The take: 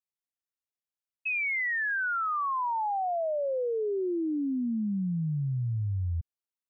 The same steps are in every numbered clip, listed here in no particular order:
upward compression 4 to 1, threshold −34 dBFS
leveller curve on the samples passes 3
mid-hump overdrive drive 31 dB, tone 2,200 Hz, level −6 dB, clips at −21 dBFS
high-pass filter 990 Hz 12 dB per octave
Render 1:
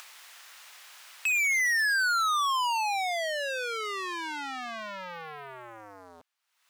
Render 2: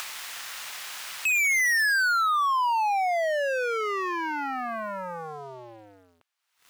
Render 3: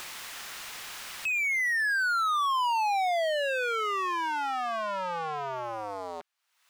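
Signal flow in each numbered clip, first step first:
mid-hump overdrive, then leveller curve on the samples, then upward compression, then high-pass filter
mid-hump overdrive, then upward compression, then high-pass filter, then leveller curve on the samples
leveller curve on the samples, then upward compression, then high-pass filter, then mid-hump overdrive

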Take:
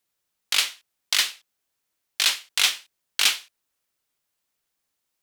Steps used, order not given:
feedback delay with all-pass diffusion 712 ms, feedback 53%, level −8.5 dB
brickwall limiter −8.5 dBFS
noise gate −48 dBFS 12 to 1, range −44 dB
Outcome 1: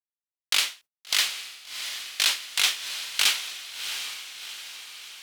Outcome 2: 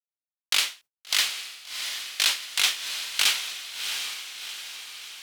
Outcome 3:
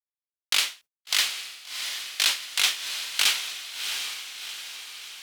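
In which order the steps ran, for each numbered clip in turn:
brickwall limiter, then noise gate, then feedback delay with all-pass diffusion
noise gate, then feedback delay with all-pass diffusion, then brickwall limiter
feedback delay with all-pass diffusion, then brickwall limiter, then noise gate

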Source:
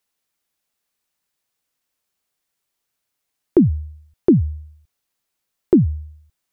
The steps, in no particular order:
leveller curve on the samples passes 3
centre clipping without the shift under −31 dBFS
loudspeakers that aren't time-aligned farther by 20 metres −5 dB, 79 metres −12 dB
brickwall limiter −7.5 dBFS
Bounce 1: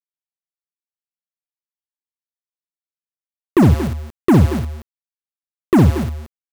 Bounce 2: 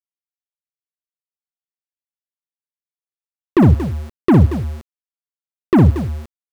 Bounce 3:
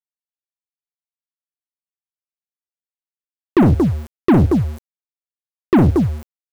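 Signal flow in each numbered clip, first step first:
brickwall limiter, then centre clipping without the shift, then leveller curve on the samples, then loudspeakers that aren't time-aligned
leveller curve on the samples, then brickwall limiter, then loudspeakers that aren't time-aligned, then centre clipping without the shift
loudspeakers that aren't time-aligned, then brickwall limiter, then leveller curve on the samples, then centre clipping without the shift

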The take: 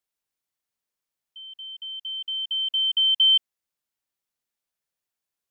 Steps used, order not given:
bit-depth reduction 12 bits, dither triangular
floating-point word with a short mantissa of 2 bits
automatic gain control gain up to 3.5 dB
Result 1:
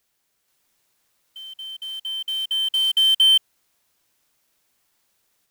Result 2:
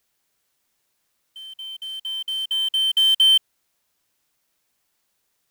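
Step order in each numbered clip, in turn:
bit-depth reduction, then automatic gain control, then floating-point word with a short mantissa
automatic gain control, then bit-depth reduction, then floating-point word with a short mantissa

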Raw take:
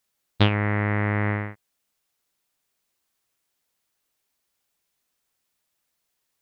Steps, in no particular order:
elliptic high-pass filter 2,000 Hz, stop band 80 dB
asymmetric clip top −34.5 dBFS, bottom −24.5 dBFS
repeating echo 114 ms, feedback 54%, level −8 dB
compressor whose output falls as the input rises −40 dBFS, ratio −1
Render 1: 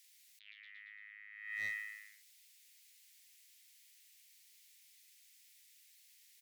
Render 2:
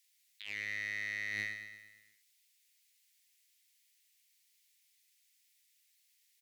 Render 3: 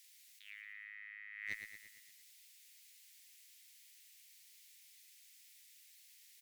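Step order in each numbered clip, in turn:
repeating echo, then compressor whose output falls as the input rises, then elliptic high-pass filter, then asymmetric clip
elliptic high-pass filter, then compressor whose output falls as the input rises, then asymmetric clip, then repeating echo
compressor whose output falls as the input rises, then elliptic high-pass filter, then asymmetric clip, then repeating echo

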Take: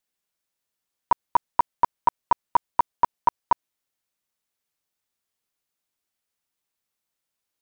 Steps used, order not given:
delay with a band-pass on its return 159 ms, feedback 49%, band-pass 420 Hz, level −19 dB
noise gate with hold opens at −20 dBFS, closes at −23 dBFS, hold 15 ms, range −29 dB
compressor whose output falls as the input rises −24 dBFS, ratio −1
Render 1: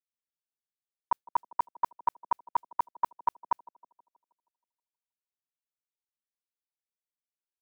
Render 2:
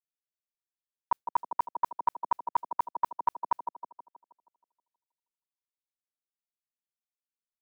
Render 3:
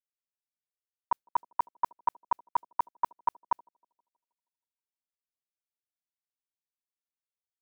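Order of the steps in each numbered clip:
compressor whose output falls as the input rises, then noise gate with hold, then delay with a band-pass on its return
noise gate with hold, then delay with a band-pass on its return, then compressor whose output falls as the input rises
delay with a band-pass on its return, then compressor whose output falls as the input rises, then noise gate with hold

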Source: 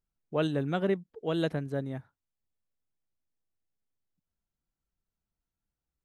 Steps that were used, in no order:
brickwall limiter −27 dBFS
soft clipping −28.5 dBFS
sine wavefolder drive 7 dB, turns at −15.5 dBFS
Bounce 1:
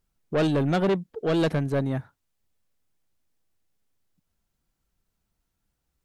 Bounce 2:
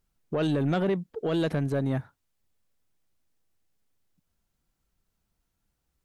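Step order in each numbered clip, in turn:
soft clipping, then brickwall limiter, then sine wavefolder
brickwall limiter, then soft clipping, then sine wavefolder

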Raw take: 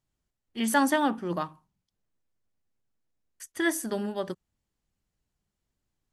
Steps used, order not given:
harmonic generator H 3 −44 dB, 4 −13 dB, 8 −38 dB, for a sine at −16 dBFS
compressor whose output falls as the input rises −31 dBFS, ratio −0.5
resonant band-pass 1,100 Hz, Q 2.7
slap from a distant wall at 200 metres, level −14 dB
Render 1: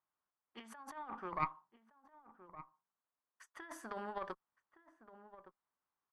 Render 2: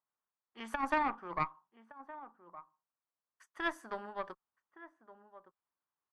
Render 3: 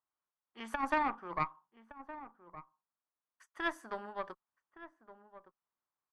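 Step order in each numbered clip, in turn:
compressor whose output falls as the input rises, then resonant band-pass, then harmonic generator, then slap from a distant wall
resonant band-pass, then compressor whose output falls as the input rises, then slap from a distant wall, then harmonic generator
resonant band-pass, then compressor whose output falls as the input rises, then harmonic generator, then slap from a distant wall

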